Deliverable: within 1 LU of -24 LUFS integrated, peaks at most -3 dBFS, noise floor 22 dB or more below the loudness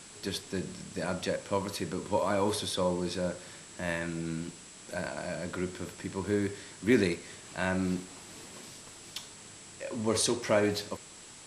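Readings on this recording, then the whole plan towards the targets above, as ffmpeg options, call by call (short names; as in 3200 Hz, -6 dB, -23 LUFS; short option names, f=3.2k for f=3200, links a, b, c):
steady tone 7700 Hz; tone level -53 dBFS; noise floor -50 dBFS; noise floor target -55 dBFS; loudness -32.5 LUFS; peak -12.5 dBFS; loudness target -24.0 LUFS
-> -af "bandreject=f=7.7k:w=30"
-af "afftdn=nr=6:nf=-50"
-af "volume=8.5dB"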